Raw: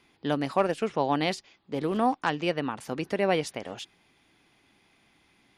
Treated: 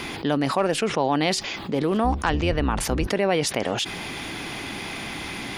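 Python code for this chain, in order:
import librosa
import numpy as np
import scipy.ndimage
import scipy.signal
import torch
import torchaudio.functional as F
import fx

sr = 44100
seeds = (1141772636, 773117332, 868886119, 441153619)

y = fx.octave_divider(x, sr, octaves=2, level_db=3.0, at=(2.04, 3.07))
y = fx.env_flatten(y, sr, amount_pct=70)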